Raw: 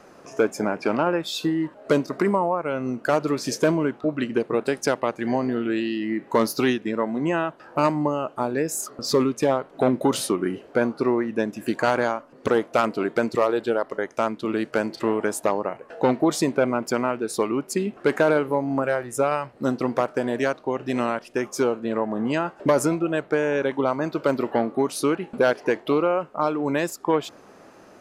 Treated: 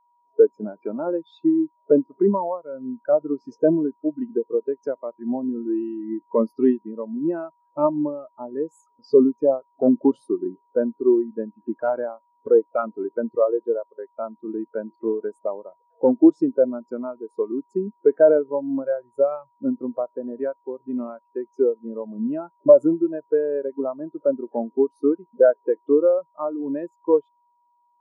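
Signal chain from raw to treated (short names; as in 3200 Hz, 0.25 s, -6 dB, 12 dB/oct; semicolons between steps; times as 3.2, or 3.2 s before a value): whine 960 Hz -39 dBFS; spectral expander 2.5:1; gain +7 dB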